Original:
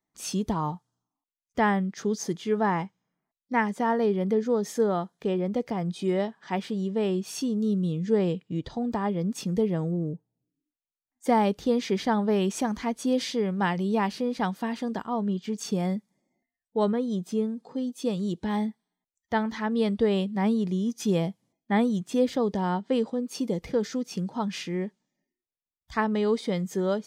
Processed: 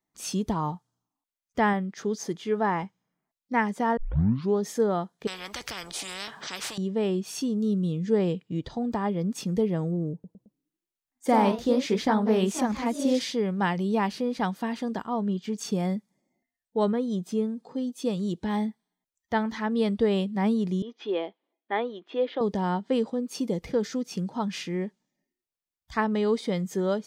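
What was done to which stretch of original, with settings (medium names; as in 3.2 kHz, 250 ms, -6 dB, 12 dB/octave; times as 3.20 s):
1.73–2.83 s: tone controls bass -4 dB, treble -3 dB
3.97 s: tape start 0.64 s
5.27–6.78 s: spectrum-flattening compressor 10:1
10.13–13.26 s: ever faster or slower copies 109 ms, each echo +1 st, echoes 3, each echo -6 dB
20.82–22.41 s: elliptic band-pass 340–3400 Hz, stop band 50 dB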